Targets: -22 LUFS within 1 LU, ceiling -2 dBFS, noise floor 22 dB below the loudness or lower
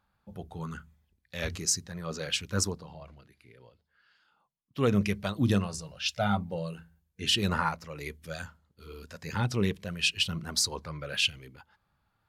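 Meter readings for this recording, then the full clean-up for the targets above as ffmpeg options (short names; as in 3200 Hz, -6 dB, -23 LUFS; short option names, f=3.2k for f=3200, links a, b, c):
loudness -30.5 LUFS; peak -13.5 dBFS; loudness target -22.0 LUFS
-> -af "volume=8.5dB"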